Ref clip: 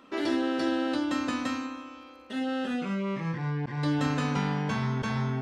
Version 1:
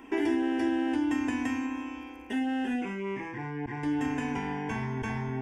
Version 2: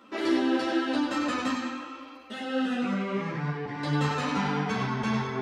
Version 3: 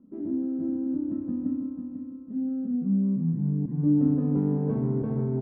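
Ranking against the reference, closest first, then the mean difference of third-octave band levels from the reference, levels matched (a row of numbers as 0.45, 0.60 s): 2, 1, 3; 3.0, 4.0, 15.5 dB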